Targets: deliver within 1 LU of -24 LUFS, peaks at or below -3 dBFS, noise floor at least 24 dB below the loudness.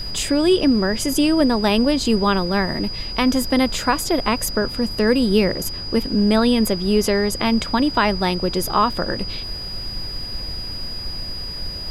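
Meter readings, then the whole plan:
steady tone 4900 Hz; tone level -29 dBFS; noise floor -30 dBFS; noise floor target -44 dBFS; loudness -20.0 LUFS; peak -4.0 dBFS; loudness target -24.0 LUFS
-> notch 4900 Hz, Q 30; noise print and reduce 14 dB; gain -4 dB

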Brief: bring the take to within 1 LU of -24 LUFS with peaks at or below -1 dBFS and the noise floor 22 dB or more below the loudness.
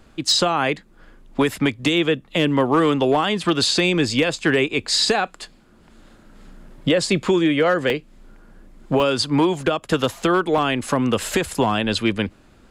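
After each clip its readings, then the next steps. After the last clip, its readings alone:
clipped 0.5%; flat tops at -9.5 dBFS; dropouts 4; longest dropout 1.3 ms; loudness -20.0 LUFS; peak -9.5 dBFS; loudness target -24.0 LUFS
-> clip repair -9.5 dBFS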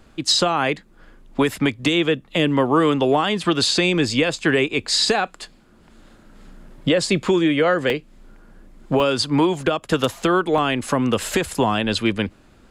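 clipped 0.0%; dropouts 4; longest dropout 1.3 ms
-> interpolate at 7.26/7.9/9/10.58, 1.3 ms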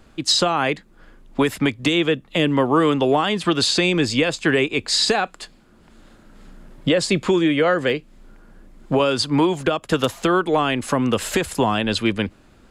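dropouts 0; loudness -20.0 LUFS; peak -2.5 dBFS; loudness target -24.0 LUFS
-> gain -4 dB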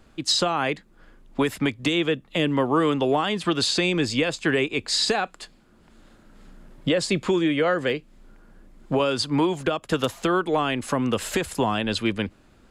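loudness -24.0 LUFS; peak -6.5 dBFS; noise floor -56 dBFS

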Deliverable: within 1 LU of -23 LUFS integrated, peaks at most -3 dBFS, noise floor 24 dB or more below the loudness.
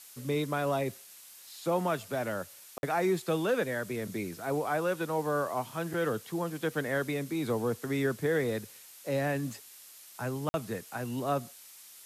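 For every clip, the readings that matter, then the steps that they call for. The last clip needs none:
dropouts 2; longest dropout 51 ms; noise floor -52 dBFS; noise floor target -57 dBFS; loudness -32.5 LUFS; peak -18.0 dBFS; loudness target -23.0 LUFS
-> interpolate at 2.78/10.49, 51 ms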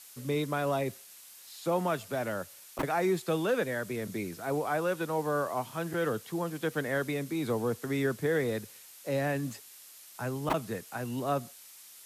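dropouts 0; noise floor -52 dBFS; noise floor target -57 dBFS
-> denoiser 6 dB, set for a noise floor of -52 dBFS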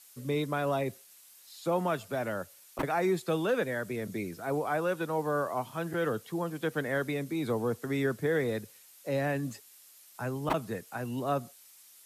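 noise floor -57 dBFS; loudness -32.5 LUFS; peak -14.5 dBFS; loudness target -23.0 LUFS
-> gain +9.5 dB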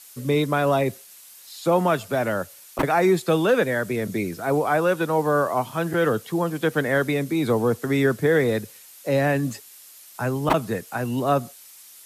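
loudness -23.0 LUFS; peak -5.0 dBFS; noise floor -47 dBFS

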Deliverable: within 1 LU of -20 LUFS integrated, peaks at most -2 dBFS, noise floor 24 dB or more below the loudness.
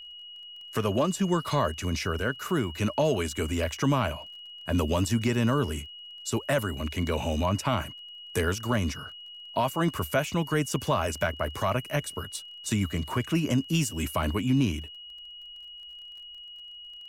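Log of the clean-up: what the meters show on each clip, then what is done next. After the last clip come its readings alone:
ticks 25/s; steady tone 2900 Hz; tone level -42 dBFS; loudness -28.5 LUFS; peak -14.5 dBFS; loudness target -20.0 LUFS
-> de-click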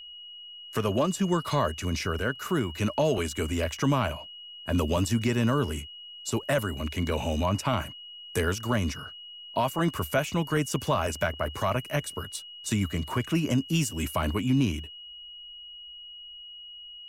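ticks 0.059/s; steady tone 2900 Hz; tone level -42 dBFS
-> notch 2900 Hz, Q 30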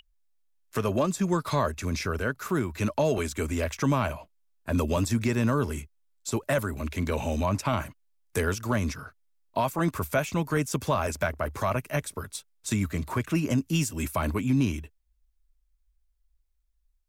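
steady tone none; loudness -28.5 LUFS; peak -14.5 dBFS; loudness target -20.0 LUFS
-> gain +8.5 dB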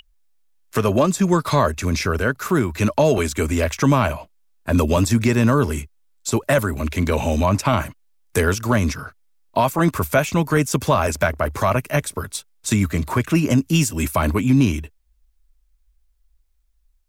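loudness -20.0 LUFS; peak -6.0 dBFS; noise floor -63 dBFS

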